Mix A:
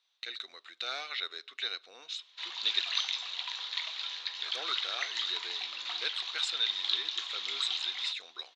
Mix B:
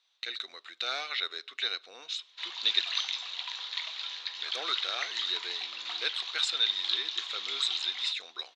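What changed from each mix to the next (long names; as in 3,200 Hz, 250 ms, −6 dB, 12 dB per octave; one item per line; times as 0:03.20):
speech +3.5 dB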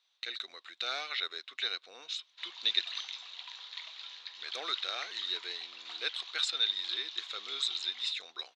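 background −6.0 dB
reverb: off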